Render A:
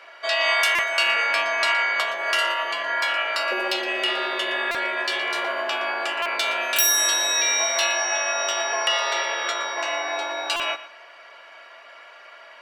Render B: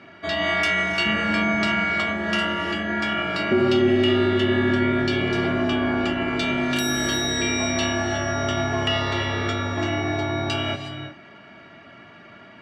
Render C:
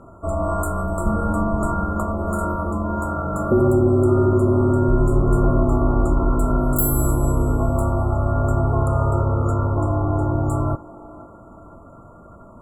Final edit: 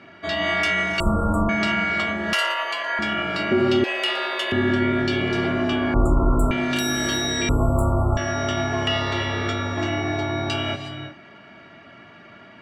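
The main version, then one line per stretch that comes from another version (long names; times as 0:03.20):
B
0:01.00–0:01.49: punch in from C
0:02.33–0:02.99: punch in from A
0:03.84–0:04.52: punch in from A
0:05.94–0:06.51: punch in from C
0:07.49–0:08.17: punch in from C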